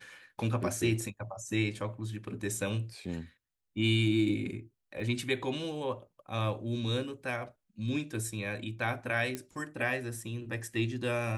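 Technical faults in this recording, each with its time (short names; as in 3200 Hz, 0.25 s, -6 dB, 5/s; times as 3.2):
5 gap 3.2 ms
9.35 pop -20 dBFS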